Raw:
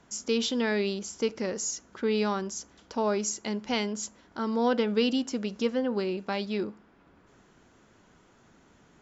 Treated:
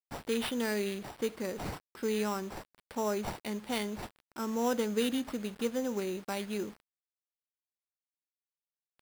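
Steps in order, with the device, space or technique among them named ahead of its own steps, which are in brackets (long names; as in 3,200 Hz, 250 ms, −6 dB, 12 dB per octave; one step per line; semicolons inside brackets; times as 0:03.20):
early 8-bit sampler (sample-rate reduction 6,600 Hz, jitter 0%; bit reduction 8 bits)
level −5 dB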